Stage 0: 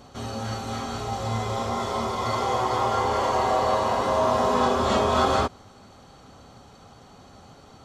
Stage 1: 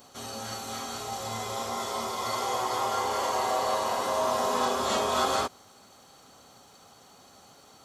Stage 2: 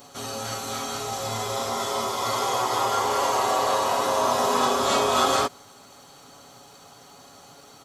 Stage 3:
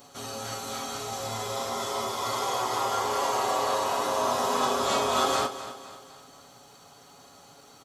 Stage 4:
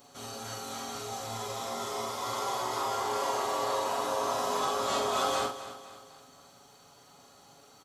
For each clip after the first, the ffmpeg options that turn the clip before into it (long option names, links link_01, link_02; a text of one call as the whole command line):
ffmpeg -i in.wav -af "aemphasis=mode=production:type=bsi,volume=-4.5dB" out.wav
ffmpeg -i in.wav -af "aecho=1:1:7.1:0.4,volume=5dB" out.wav
ffmpeg -i in.wav -af "aecho=1:1:252|504|756|1008:0.224|0.101|0.0453|0.0204,volume=-4dB" out.wav
ffmpeg -i in.wav -filter_complex "[0:a]asplit=2[link_01][link_02];[link_02]adelay=43,volume=-4.5dB[link_03];[link_01][link_03]amix=inputs=2:normalize=0,volume=-5.5dB" out.wav